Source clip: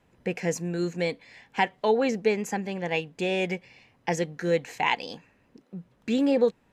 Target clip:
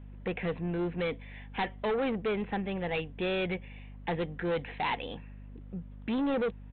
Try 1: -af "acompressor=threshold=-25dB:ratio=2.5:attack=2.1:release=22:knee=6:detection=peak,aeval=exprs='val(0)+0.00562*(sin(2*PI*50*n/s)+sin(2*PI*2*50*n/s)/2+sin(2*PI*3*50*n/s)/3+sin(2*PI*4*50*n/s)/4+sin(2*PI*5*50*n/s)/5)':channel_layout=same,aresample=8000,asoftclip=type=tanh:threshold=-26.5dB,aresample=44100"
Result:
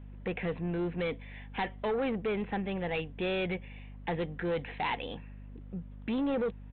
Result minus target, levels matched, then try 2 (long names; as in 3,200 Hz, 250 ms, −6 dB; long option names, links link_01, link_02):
downward compressor: peak gain reduction +6.5 dB
-af "aeval=exprs='val(0)+0.00562*(sin(2*PI*50*n/s)+sin(2*PI*2*50*n/s)/2+sin(2*PI*3*50*n/s)/3+sin(2*PI*4*50*n/s)/4+sin(2*PI*5*50*n/s)/5)':channel_layout=same,aresample=8000,asoftclip=type=tanh:threshold=-26.5dB,aresample=44100"